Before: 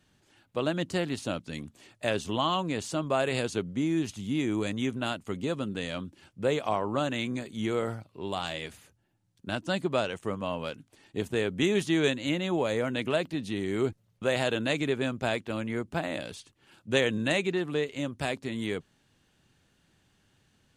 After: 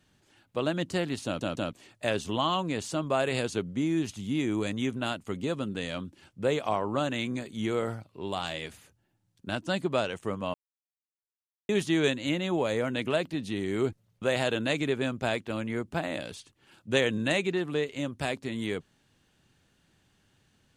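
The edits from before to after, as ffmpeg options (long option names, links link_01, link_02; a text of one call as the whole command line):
ffmpeg -i in.wav -filter_complex "[0:a]asplit=6[link_01][link_02][link_03][link_04][link_05][link_06];[link_01]atrim=end=1.412[link_07];[link_02]atrim=start=1.248:end=1.412[link_08];[link_03]atrim=start=1.248:end=1.412[link_09];[link_04]atrim=start=1.728:end=10.54,asetpts=PTS-STARTPTS,afade=type=out:start_time=8.808:duration=0.004:curve=hsin[link_10];[link_05]atrim=start=10.54:end=11.69,asetpts=PTS-STARTPTS,volume=0[link_11];[link_06]atrim=start=11.69,asetpts=PTS-STARTPTS,afade=type=in:duration=0.004:curve=hsin[link_12];[link_07][link_08]acrossfade=duration=0.004:curve1=hsin:curve2=hsin[link_13];[link_13][link_09]acrossfade=duration=0.004:curve1=hsin:curve2=hsin[link_14];[link_10][link_11][link_12]concat=n=3:v=0:a=1[link_15];[link_14][link_15]acrossfade=duration=0.004:curve1=hsin:curve2=hsin" out.wav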